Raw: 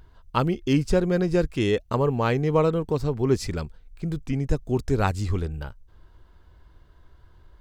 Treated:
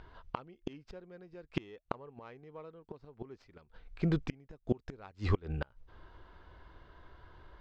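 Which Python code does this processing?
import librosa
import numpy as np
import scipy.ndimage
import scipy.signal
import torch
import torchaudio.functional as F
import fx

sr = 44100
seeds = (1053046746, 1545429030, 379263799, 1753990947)

y = fx.tracing_dist(x, sr, depth_ms=0.069)
y = fx.low_shelf(y, sr, hz=260.0, db=-12.0)
y = fx.gate_flip(y, sr, shuts_db=-24.0, range_db=-31)
y = fx.air_absorb(y, sr, metres=220.0)
y = y * 10.0 ** (7.0 / 20.0)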